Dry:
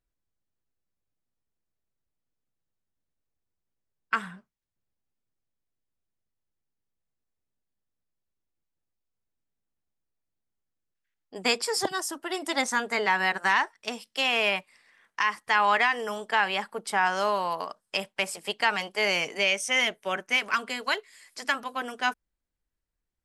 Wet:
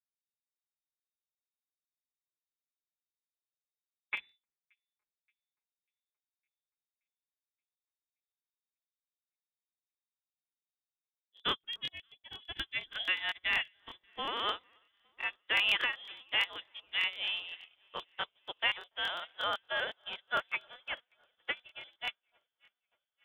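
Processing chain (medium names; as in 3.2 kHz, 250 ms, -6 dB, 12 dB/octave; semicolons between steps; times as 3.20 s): tilt EQ -2.5 dB/octave; frequency inversion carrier 3.7 kHz; treble shelf 2.3 kHz -9.5 dB; on a send: echo whose repeats swap between lows and highs 288 ms, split 1.5 kHz, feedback 85%, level -13 dB; on the sum: crackling interface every 0.12 s, samples 1024, repeat, from 0.55 s; upward expansion 2.5:1, over -52 dBFS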